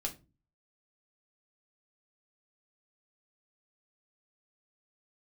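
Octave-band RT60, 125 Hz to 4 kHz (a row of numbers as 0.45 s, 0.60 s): 0.55 s, 0.50 s, 0.35 s, 0.25 s, 0.20 s, 0.20 s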